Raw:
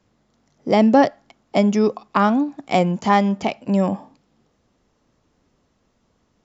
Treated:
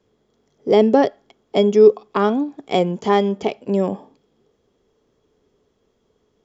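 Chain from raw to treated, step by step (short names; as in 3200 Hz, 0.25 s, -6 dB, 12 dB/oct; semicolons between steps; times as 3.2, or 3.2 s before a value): small resonant body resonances 420/3300 Hz, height 15 dB, ringing for 40 ms; gain -4 dB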